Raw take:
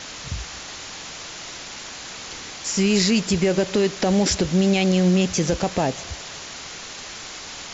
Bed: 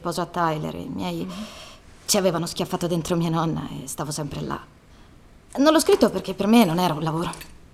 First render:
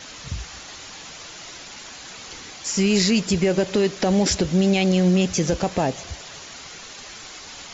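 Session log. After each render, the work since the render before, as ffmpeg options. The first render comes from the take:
-af "afftdn=nr=6:nf=-37"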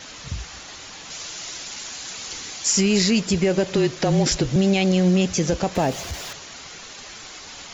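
-filter_complex "[0:a]asettb=1/sr,asplit=3[s0][s1][s2];[s0]atrim=end=1.104[s3];[s1]atrim=start=1.1:end=2.81,asetpts=PTS-STARTPTS,afade=t=in:d=0.004:c=qsin,afade=t=out:st=1.706:d=0.004:c=qsin,highshelf=f=3900:g=9.5[s4];[s2]atrim=start=2.806[s5];[s3][s4]acrossfade=d=0.004:c1=hsin:c2=qsin[s6];[s6][s5]acrossfade=d=0.004:c1=qsin:c2=hsin,asettb=1/sr,asplit=3[s7][s8][s9];[s7]atrim=end=3.734[s10];[s8]atrim=start=3.73:end=4.56,asetpts=PTS-STARTPTS,afade=t=in:d=0.004:c=qsin,afade=t=out:st=0.826:d=0.004:c=qsin,afreqshift=-28[s11];[s9]atrim=start=4.556[s12];[s10][s11]acrossfade=d=0.004:c1=hsin:c2=qsin[s13];[s13][s12]acrossfade=d=0.004:c1=qsin:c2=hsin,asettb=1/sr,asplit=3[s14][s15][s16];[s14]atrim=end=5.754[s17];[s15]atrim=start=5.75:end=6.33,asetpts=PTS-STARTPTS,afade=t=in:d=0.004:c=qsin,afade=t=out:st=0.576:d=0.004:c=qsin,aeval=exprs='val(0)+0.5*0.0211*sgn(val(0))':c=same[s18];[s16]atrim=start=6.326[s19];[s17][s18]acrossfade=d=0.004:c1=hsin:c2=qsin[s20];[s20][s19]acrossfade=d=0.004:c1=qsin:c2=hsin"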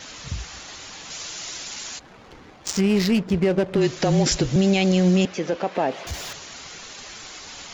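-filter_complex "[0:a]asplit=3[s0][s1][s2];[s0]afade=t=out:st=1.98:d=0.02[s3];[s1]adynamicsmooth=sensitivity=1.5:basefreq=840,afade=t=in:st=1.98:d=0.02,afade=t=out:st=3.8:d=0.02[s4];[s2]afade=t=in:st=3.8:d=0.02[s5];[s3][s4][s5]amix=inputs=3:normalize=0,asettb=1/sr,asplit=3[s6][s7][s8];[s6]atrim=end=5.254[s9];[s7]atrim=start=5.25:end=6.07,asetpts=PTS-STARTPTS,afade=t=in:d=0.004:c=qsin,afade=t=out:st=0.816:d=0.004:c=qsin,highpass=300,lowpass=2800[s10];[s8]atrim=start=6.066[s11];[s9][s10]acrossfade=d=0.004:c1=hsin:c2=qsin[s12];[s12][s11]acrossfade=d=0.004:c1=qsin:c2=hsin"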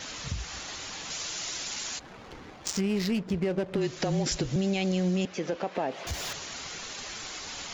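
-af "acompressor=threshold=0.0251:ratio=2"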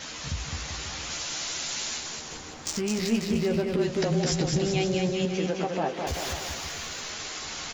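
-filter_complex "[0:a]asplit=2[s0][s1];[s1]adelay=13,volume=0.473[s2];[s0][s2]amix=inputs=2:normalize=0,aecho=1:1:210|388.5|540.2|669.2|778.8:0.631|0.398|0.251|0.158|0.1"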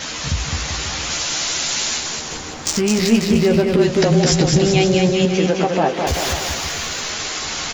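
-af "volume=3.55"

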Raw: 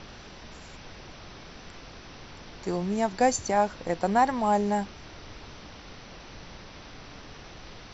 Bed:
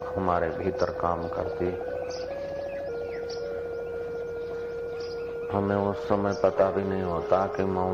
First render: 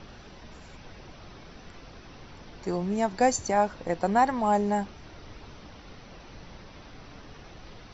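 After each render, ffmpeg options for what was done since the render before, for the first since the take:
-af "afftdn=nr=6:nf=-47"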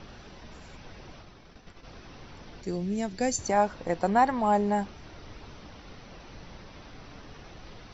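-filter_complex "[0:a]asplit=3[s0][s1][s2];[s0]afade=t=out:st=1.21:d=0.02[s3];[s1]agate=range=0.0224:threshold=0.00794:ratio=3:release=100:detection=peak,afade=t=in:st=1.21:d=0.02,afade=t=out:st=1.83:d=0.02[s4];[s2]afade=t=in:st=1.83:d=0.02[s5];[s3][s4][s5]amix=inputs=3:normalize=0,asettb=1/sr,asplit=3[s6][s7][s8];[s6]atrim=end=2.614[s9];[s7]atrim=start=2.61:end=3.39,asetpts=PTS-STARTPTS,afade=t=in:d=0.004:c=qsin,afade=t=out:st=0.776:d=0.004:c=qsin,equalizer=f=960:t=o:w=1.4:g=-13.5[s10];[s8]atrim=start=3.386[s11];[s9][s10]acrossfade=d=0.004:c1=hsin:c2=qsin[s12];[s12][s11]acrossfade=d=0.004:c1=qsin:c2=hsin,asettb=1/sr,asplit=3[s13][s14][s15];[s13]atrim=end=4.094[s16];[s14]atrim=start=4.09:end=4.78,asetpts=PTS-STARTPTS,afade=t=in:d=0.004:c=qsin,afade=t=out:st=0.686:d=0.004:c=qsin,equalizer=f=6500:w=2.4:g=-6[s17];[s15]atrim=start=4.776[s18];[s16][s17]acrossfade=d=0.004:c1=hsin:c2=qsin[s19];[s19][s18]acrossfade=d=0.004:c1=qsin:c2=hsin"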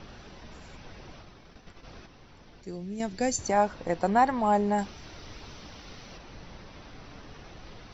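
-filter_complex "[0:a]asettb=1/sr,asplit=3[s0][s1][s2];[s0]atrim=end=4.784[s3];[s1]atrim=start=4.78:end=6.18,asetpts=PTS-STARTPTS,afade=t=in:d=0.004:c=qsin,afade=t=out:st=1.396:d=0.004:c=qsin,highshelf=f=3300:g=9[s4];[s2]atrim=start=6.176[s5];[s3][s4]acrossfade=d=0.004:c1=hsin:c2=qsin[s6];[s6][s5]acrossfade=d=0.004:c1=qsin:c2=hsin,asplit=3[s7][s8][s9];[s7]atrim=end=2.062[s10];[s8]atrim=start=2.058:end=3.002,asetpts=PTS-STARTPTS,volume=0.473[s11];[s9]atrim=start=2.998[s12];[s10][s11]acrossfade=d=0.004:c1=hsin:c2=hsin[s13];[s13][s12]acrossfade=d=0.004:c1=hsin:c2=hsin"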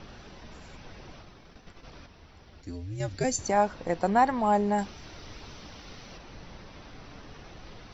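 -filter_complex "[0:a]asplit=3[s0][s1][s2];[s0]afade=t=out:st=1.9:d=0.02[s3];[s1]afreqshift=-92,afade=t=in:st=1.9:d=0.02,afade=t=out:st=3.23:d=0.02[s4];[s2]afade=t=in:st=3.23:d=0.02[s5];[s3][s4][s5]amix=inputs=3:normalize=0"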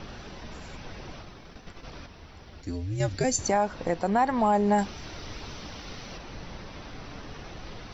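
-af "acontrast=30,alimiter=limit=0.178:level=0:latency=1:release=209"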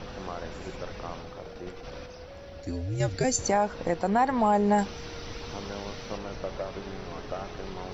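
-filter_complex "[1:a]volume=0.224[s0];[0:a][s0]amix=inputs=2:normalize=0"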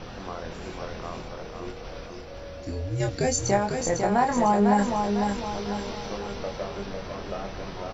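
-filter_complex "[0:a]asplit=2[s0][s1];[s1]adelay=25,volume=0.562[s2];[s0][s2]amix=inputs=2:normalize=0,aecho=1:1:501|1002|1503|2004|2505:0.562|0.247|0.109|0.0479|0.0211"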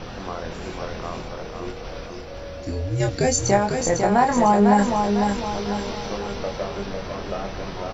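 -af "volume=1.68"

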